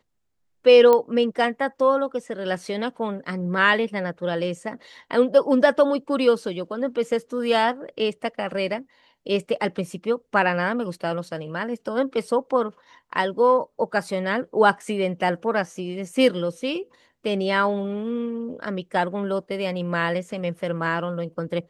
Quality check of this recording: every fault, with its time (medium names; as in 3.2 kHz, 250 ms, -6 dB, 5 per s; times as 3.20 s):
0.93 s: pop -8 dBFS